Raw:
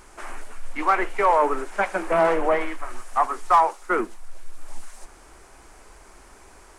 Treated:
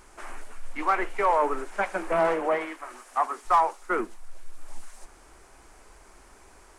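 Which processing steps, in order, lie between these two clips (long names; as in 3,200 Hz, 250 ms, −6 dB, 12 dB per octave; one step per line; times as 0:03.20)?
0:02.32–0:03.45: high-pass filter 91 Hz → 190 Hz 6 dB per octave
level −4 dB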